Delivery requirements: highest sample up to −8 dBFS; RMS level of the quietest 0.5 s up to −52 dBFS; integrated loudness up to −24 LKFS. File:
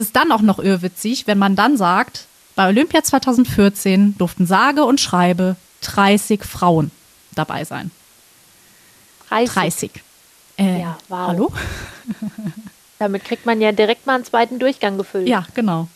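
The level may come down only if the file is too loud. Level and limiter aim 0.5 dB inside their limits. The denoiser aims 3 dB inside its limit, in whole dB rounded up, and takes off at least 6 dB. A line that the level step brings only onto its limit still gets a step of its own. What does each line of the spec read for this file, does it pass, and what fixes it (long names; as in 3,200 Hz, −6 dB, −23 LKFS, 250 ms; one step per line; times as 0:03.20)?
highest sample −3.0 dBFS: out of spec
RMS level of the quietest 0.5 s −50 dBFS: out of spec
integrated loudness −17.0 LKFS: out of spec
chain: level −7.5 dB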